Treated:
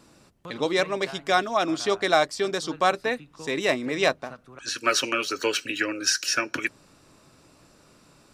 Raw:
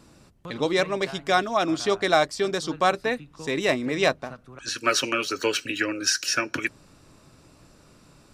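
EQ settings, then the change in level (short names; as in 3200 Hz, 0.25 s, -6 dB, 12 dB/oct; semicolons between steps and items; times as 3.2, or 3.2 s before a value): low shelf 150 Hz -8.5 dB; 0.0 dB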